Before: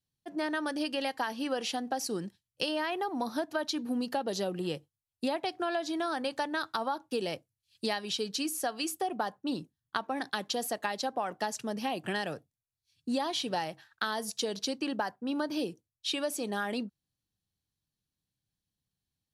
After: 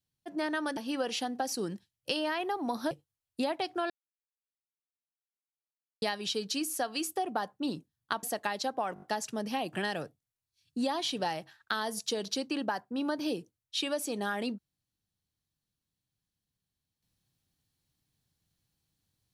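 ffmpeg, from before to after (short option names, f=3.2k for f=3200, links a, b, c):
-filter_complex "[0:a]asplit=10[a][b][c][d][e][f][g][h][i][j];[a]atrim=end=0.772[k];[b]atrim=start=1.288:end=3.432[l];[c]atrim=start=4.748:end=5.74,asetpts=PTS-STARTPTS,afade=t=out:st=0.988:d=0.004:c=hsin[m];[d]atrim=start=5.74:end=7.86,asetpts=PTS-STARTPTS,volume=0[n];[e]atrim=start=7.86:end=10.072,asetpts=PTS-STARTPTS,afade=t=in:d=0.004:c=hsin[o];[f]atrim=start=10.618:end=11.352[p];[g]atrim=start=11.328:end=11.352[q];[h]atrim=start=11.328:end=11.352[r];[i]atrim=start=11.328:end=11.352[s];[j]atrim=start=11.328[t];[k][l]acrossfade=d=0.004:c1=hsin:c2=hsin[u];[m][n][o]concat=n=3:v=0:a=1[v];[u][v]acrossfade=d=0.004:c1=hsin:c2=hsin[w];[w][p]acrossfade=d=0.004:c1=hsin:c2=hsin[x];[x][q]acrossfade=d=0.004:c1=hsin:c2=hsin[y];[y][r]acrossfade=d=0.004:c1=hsin:c2=hsin[z];[z][s]acrossfade=d=0.004:c1=hsin:c2=hsin[aa];[aa][t]acrossfade=d=0.004:c1=hsin:c2=hsin"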